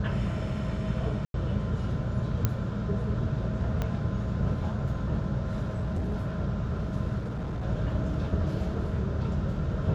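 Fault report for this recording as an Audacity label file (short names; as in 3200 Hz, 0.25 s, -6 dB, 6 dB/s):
1.250000	1.340000	gap 92 ms
2.450000	2.450000	pop -11 dBFS
3.820000	3.820000	pop -17 dBFS
5.620000	6.310000	clipped -26 dBFS
7.180000	7.660000	clipped -29.5 dBFS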